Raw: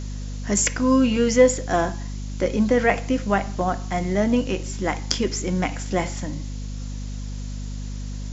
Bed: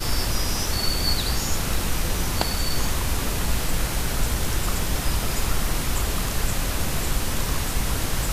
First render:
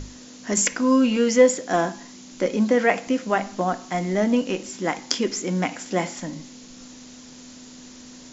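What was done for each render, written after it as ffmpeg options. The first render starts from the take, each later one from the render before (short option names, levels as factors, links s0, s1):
-af "bandreject=f=50:t=h:w=6,bandreject=f=100:t=h:w=6,bandreject=f=150:t=h:w=6,bandreject=f=200:t=h:w=6"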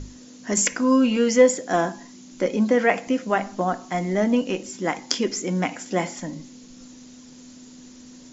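-af "afftdn=nr=6:nf=-44"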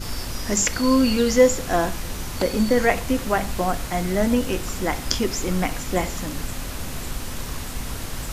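-filter_complex "[1:a]volume=0.501[s0];[0:a][s0]amix=inputs=2:normalize=0"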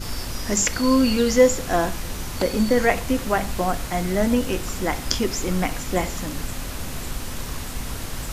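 -af anull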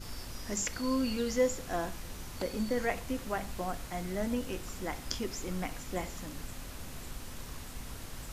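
-af "volume=0.224"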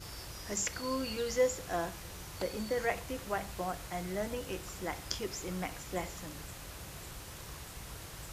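-af "highpass=53,equalizer=f=240:t=o:w=0.25:g=-14.5"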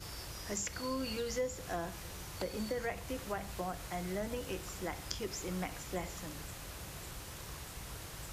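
-filter_complex "[0:a]acrossover=split=240[s0][s1];[s1]acompressor=threshold=0.0158:ratio=3[s2];[s0][s2]amix=inputs=2:normalize=0"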